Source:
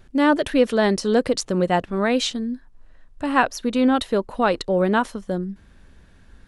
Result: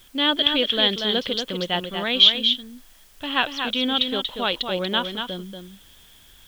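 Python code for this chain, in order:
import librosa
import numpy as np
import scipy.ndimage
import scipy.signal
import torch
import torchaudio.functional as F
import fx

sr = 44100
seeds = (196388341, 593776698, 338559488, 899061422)

y = fx.ladder_lowpass(x, sr, hz=3400.0, resonance_pct=90)
y = fx.high_shelf(y, sr, hz=2500.0, db=11.5)
y = fx.quant_dither(y, sr, seeds[0], bits=10, dither='triangular')
y = y + 10.0 ** (-6.5 / 20.0) * np.pad(y, (int(236 * sr / 1000.0), 0))[:len(y)]
y = y * librosa.db_to_amplitude(4.5)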